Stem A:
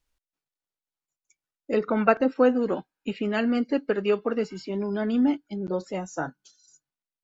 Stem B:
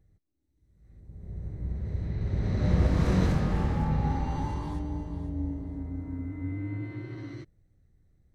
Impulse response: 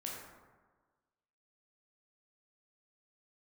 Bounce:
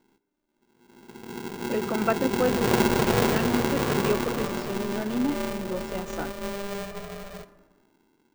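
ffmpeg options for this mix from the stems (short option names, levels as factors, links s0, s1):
-filter_complex "[0:a]volume=0.596[s0];[1:a]dynaudnorm=f=160:g=13:m=1.58,aeval=exprs='val(0)*sgn(sin(2*PI*300*n/s))':c=same,volume=0.596,asplit=2[s1][s2];[s2]volume=0.316[s3];[2:a]atrim=start_sample=2205[s4];[s3][s4]afir=irnorm=-1:irlink=0[s5];[s0][s1][s5]amix=inputs=3:normalize=0"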